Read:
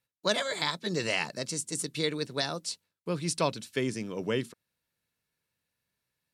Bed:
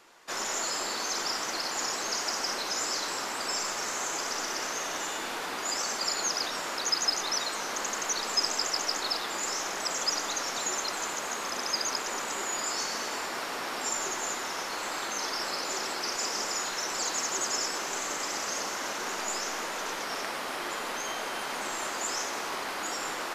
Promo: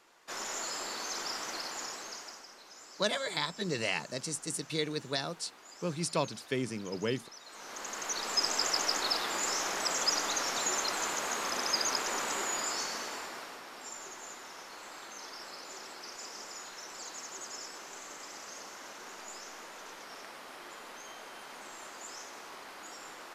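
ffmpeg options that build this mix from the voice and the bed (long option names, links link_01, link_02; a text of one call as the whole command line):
ffmpeg -i stem1.wav -i stem2.wav -filter_complex "[0:a]adelay=2750,volume=-3dB[link_01];[1:a]volume=14.5dB,afade=type=out:start_time=1.56:duration=0.91:silence=0.177828,afade=type=in:start_time=7.43:duration=1.25:silence=0.0944061,afade=type=out:start_time=12.31:duration=1.32:silence=0.237137[link_02];[link_01][link_02]amix=inputs=2:normalize=0" out.wav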